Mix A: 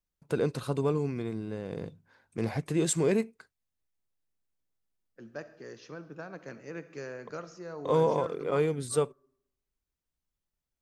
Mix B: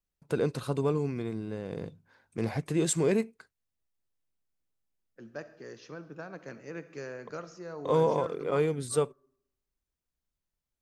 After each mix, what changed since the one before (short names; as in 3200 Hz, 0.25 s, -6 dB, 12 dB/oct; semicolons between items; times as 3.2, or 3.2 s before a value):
none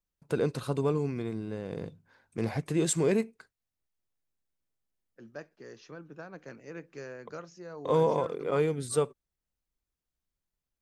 reverb: off